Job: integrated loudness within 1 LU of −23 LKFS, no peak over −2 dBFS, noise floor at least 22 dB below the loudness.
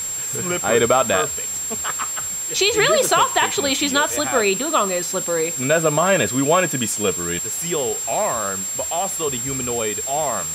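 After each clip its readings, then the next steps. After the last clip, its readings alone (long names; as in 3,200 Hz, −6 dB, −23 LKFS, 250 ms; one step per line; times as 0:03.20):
interfering tone 7,500 Hz; level of the tone −24 dBFS; background noise floor −27 dBFS; target noise floor −41 dBFS; integrated loudness −19.0 LKFS; sample peak −4.5 dBFS; target loudness −23.0 LKFS
→ notch filter 7,500 Hz, Q 30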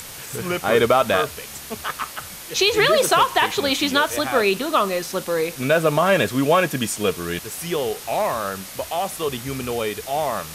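interfering tone none found; background noise floor −37 dBFS; target noise floor −43 dBFS
→ broadband denoise 6 dB, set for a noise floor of −37 dBFS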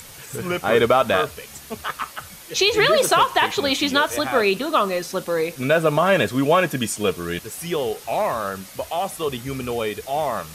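background noise floor −42 dBFS; target noise floor −43 dBFS
→ broadband denoise 6 dB, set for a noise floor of −42 dBFS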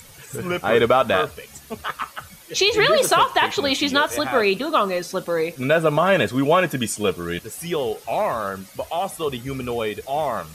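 background noise floor −46 dBFS; integrated loudness −21.0 LKFS; sample peak −5.0 dBFS; target loudness −23.0 LKFS
→ level −2 dB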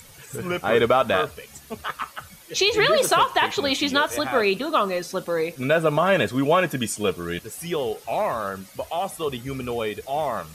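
integrated loudness −23.0 LKFS; sample peak −7.0 dBFS; background noise floor −48 dBFS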